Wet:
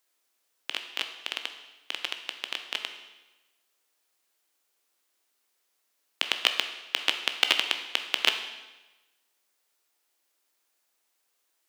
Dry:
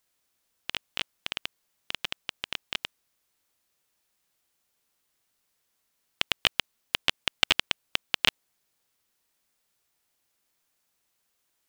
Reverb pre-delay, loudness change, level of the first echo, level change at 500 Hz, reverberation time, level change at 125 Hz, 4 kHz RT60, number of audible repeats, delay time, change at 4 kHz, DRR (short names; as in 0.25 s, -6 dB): 14 ms, +0.5 dB, none, +1.0 dB, 1.1 s, under -20 dB, 1.0 s, none, none, +1.0 dB, 6.0 dB